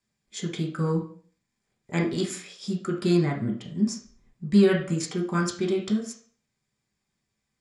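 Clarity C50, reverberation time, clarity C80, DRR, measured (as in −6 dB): 8.0 dB, 0.50 s, 13.0 dB, −0.5 dB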